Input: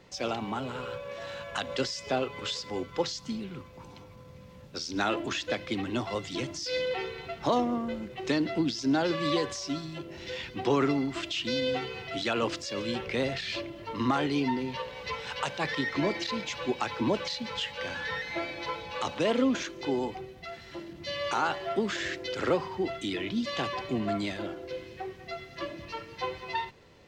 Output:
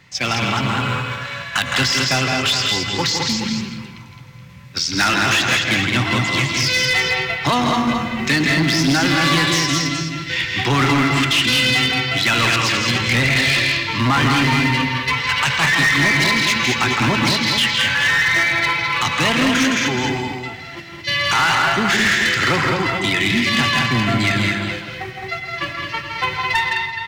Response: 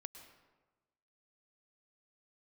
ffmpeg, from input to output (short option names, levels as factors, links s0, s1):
-filter_complex "[0:a]agate=range=0.398:threshold=0.0126:ratio=16:detection=peak,equalizer=f=125:t=o:w=1:g=11,equalizer=f=500:t=o:w=1:g=-9,equalizer=f=1000:t=o:w=1:g=3,equalizer=f=2000:t=o:w=1:g=10,aecho=1:1:163|213|424:0.501|0.596|0.316,asplit=2[s0][s1];[1:a]atrim=start_sample=2205,highshelf=f=2600:g=11.5[s2];[s1][s2]afir=irnorm=-1:irlink=0,volume=3.16[s3];[s0][s3]amix=inputs=2:normalize=0,asoftclip=type=hard:threshold=0.251"